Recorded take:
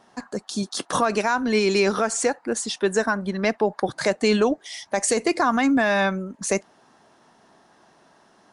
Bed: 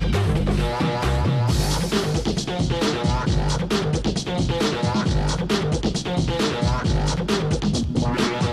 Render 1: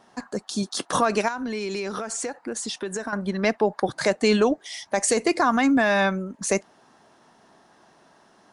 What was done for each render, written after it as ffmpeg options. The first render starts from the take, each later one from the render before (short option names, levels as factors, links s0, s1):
-filter_complex "[0:a]asettb=1/sr,asplit=3[s0][s1][s2];[s0]atrim=end=1.284[s3];[s1]atrim=start=1.28:end=3.13,asetpts=PTS-STARTPTS,afade=t=in:d=0.004:c=qsin,afade=t=out:st=1.846:d=0.004:c=qsin,acompressor=threshold=0.0501:ratio=6:attack=3.2:release=140:knee=1:detection=peak[s4];[s2]atrim=start=3.126[s5];[s3][s4]acrossfade=d=0.004:c1=hsin:c2=qsin[s6];[s6][s5]acrossfade=d=0.004:c1=qsin:c2=hsin"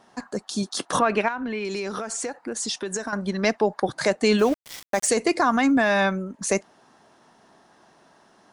-filter_complex "[0:a]asettb=1/sr,asplit=3[s0][s1][s2];[s0]atrim=end=0.994[s3];[s1]atrim=start=0.99:end=1.65,asetpts=PTS-STARTPTS,afade=t=in:d=0.004:c=qsin,afade=t=out:st=0.656:d=0.004:c=qsin,highshelf=f=4100:t=q:w=1.5:g=-13.5[s4];[s2]atrim=start=1.646[s5];[s3][s4]acrossfade=d=0.004:c1=hsin:c2=qsin[s6];[s6][s5]acrossfade=d=0.004:c1=qsin:c2=hsin,asettb=1/sr,asplit=3[s7][s8][s9];[s7]atrim=end=2.604[s10];[s8]atrim=start=2.6:end=3.74,asetpts=PTS-STARTPTS,afade=t=in:d=0.004:c=qsin,afade=t=out:st=1.136:d=0.004:c=qsin,equalizer=f=5900:t=o:w=1.1:g=5.5[s11];[s9]atrim=start=3.736[s12];[s10][s11]acrossfade=d=0.004:c1=hsin:c2=qsin[s13];[s13][s12]acrossfade=d=0.004:c1=qsin:c2=hsin,asplit=3[s14][s15][s16];[s14]afade=t=out:st=4.38:d=0.02[s17];[s15]aeval=exprs='val(0)*gte(abs(val(0)),0.0266)':c=same,afade=t=in:st=4.38:d=0.02,afade=t=out:st=5.07:d=0.02[s18];[s16]afade=t=in:st=5.07:d=0.02[s19];[s17][s18][s19]amix=inputs=3:normalize=0"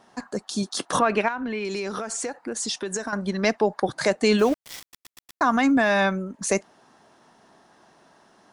-filter_complex "[0:a]asplit=6[s0][s1][s2][s3][s4][s5];[s0]atrim=end=4.932[s6];[s1]atrim=start=4.808:end=4.932[s7];[s2]atrim=start=4.808:end=4.932[s8];[s3]atrim=start=4.808:end=4.932[s9];[s4]atrim=start=4.808:end=4.932[s10];[s5]atrim=start=5.408[s11];[s6][s7]acrossfade=d=0.004:c1=hsin:c2=hsin[s12];[s12][s8]acrossfade=d=0.004:c1=hsin:c2=hsin[s13];[s13][s9]acrossfade=d=0.004:c1=hsin:c2=hsin[s14];[s14][s10]acrossfade=d=0.004:c1=hsin:c2=hsin[s15];[s15][s11]acrossfade=d=0.004:c1=hsin:c2=hsin"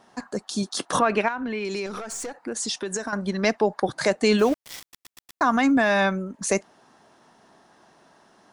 -filter_complex "[0:a]asettb=1/sr,asplit=3[s0][s1][s2];[s0]atrim=end=1.864[s3];[s1]atrim=start=1.86:end=2.41,asetpts=PTS-STARTPTS,afade=t=in:d=0.004:c=qsin,afade=t=out:st=0.546:d=0.004:c=qsin,aeval=exprs='(tanh(22.4*val(0)+0.3)-tanh(0.3))/22.4':c=same[s4];[s2]atrim=start=2.406[s5];[s3][s4]acrossfade=d=0.004:c1=hsin:c2=qsin[s6];[s6][s5]acrossfade=d=0.004:c1=qsin:c2=hsin"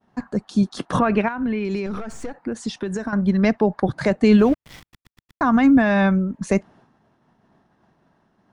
-af "agate=range=0.0224:threshold=0.00355:ratio=3:detection=peak,bass=f=250:g=14,treble=f=4000:g=-12"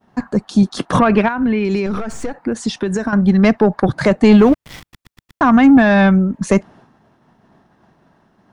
-af "acontrast=90"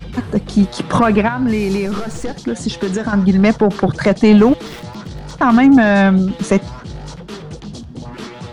-filter_complex "[1:a]volume=0.355[s0];[0:a][s0]amix=inputs=2:normalize=0"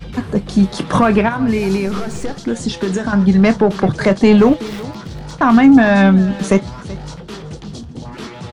-filter_complex "[0:a]asplit=2[s0][s1];[s1]adelay=26,volume=0.237[s2];[s0][s2]amix=inputs=2:normalize=0,aecho=1:1:380:0.119"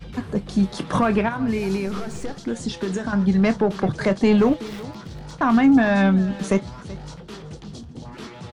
-af "volume=0.447"